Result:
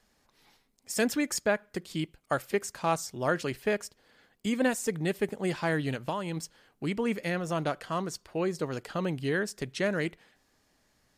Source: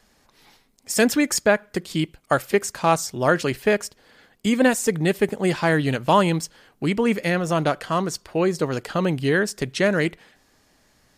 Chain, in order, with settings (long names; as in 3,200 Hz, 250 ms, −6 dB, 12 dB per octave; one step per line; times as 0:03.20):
0:05.93–0:06.37: downward compressor 10 to 1, threshold −20 dBFS, peak gain reduction 9 dB
level −9 dB